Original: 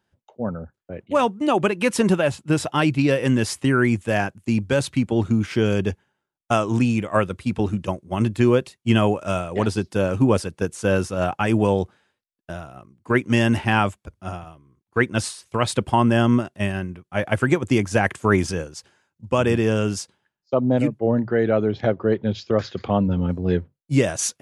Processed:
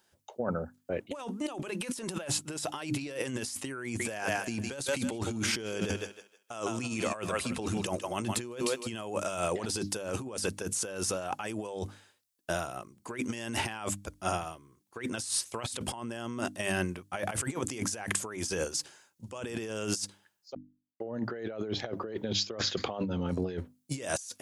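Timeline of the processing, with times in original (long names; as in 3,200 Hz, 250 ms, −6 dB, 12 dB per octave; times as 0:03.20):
0:03.84–0:09.03: feedback echo with a high-pass in the loop 156 ms, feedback 28%, level −11.5 dB
0:20.55–0:21.00: silence
whole clip: bass and treble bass −9 dB, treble +11 dB; mains-hum notches 50/100/150/200/250/300 Hz; compressor whose output falls as the input rises −31 dBFS, ratio −1; level −4 dB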